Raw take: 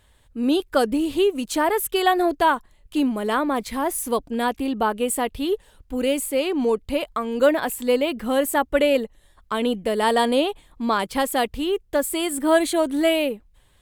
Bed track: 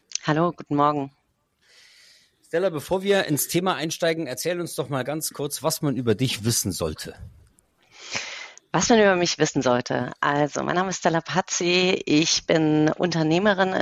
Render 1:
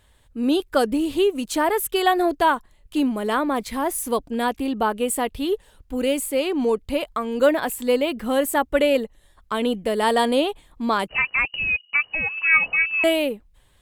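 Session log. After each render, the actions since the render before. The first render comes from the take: 11.08–13.04 s: frequency inversion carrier 2.9 kHz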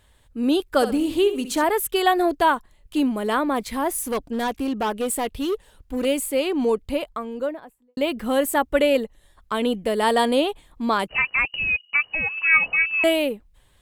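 0.72–1.64 s: flutter echo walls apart 11.3 m, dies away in 0.35 s; 4.01–6.05 s: overload inside the chain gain 20 dB; 6.71–7.97 s: studio fade out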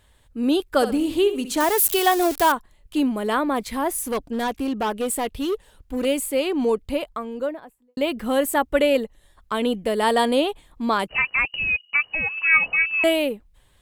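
1.60–2.52 s: zero-crossing glitches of -17 dBFS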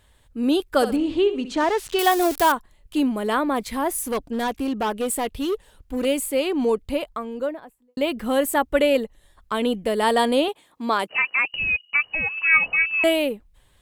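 0.96–1.99 s: distance through air 130 m; 10.48–11.50 s: high-pass 250 Hz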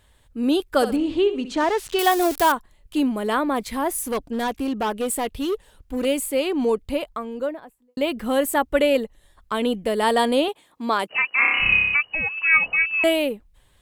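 11.35–11.95 s: flutter echo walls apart 5.2 m, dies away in 1.3 s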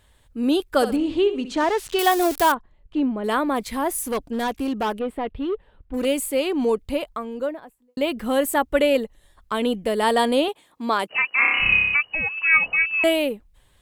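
2.54–3.24 s: tape spacing loss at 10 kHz 30 dB; 4.99–5.94 s: distance through air 450 m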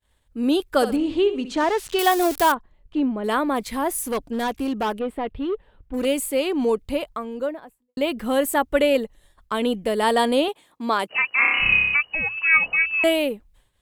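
expander -50 dBFS; hum notches 60/120 Hz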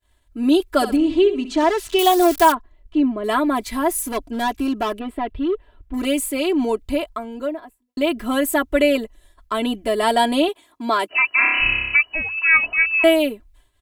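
comb 3 ms, depth 90%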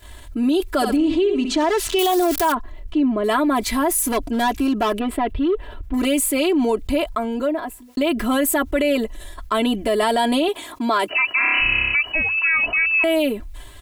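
peak limiter -12 dBFS, peak gain reduction 9 dB; level flattener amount 50%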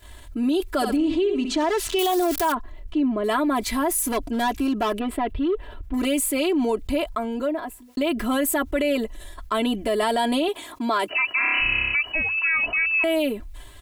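trim -3.5 dB

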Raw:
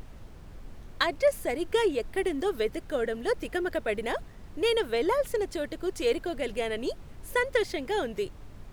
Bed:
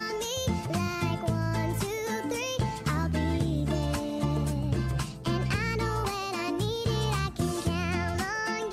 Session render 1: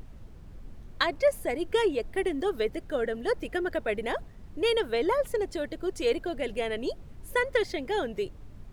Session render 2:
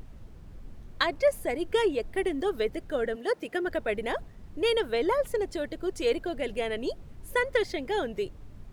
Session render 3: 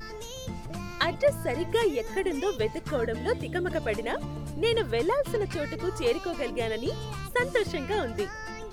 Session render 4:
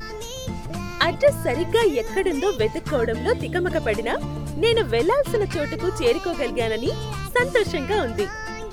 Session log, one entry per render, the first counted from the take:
noise reduction 6 dB, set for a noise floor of -47 dBFS
3.15–3.65 s: high-pass 310 Hz -> 150 Hz
add bed -8.5 dB
trim +6.5 dB

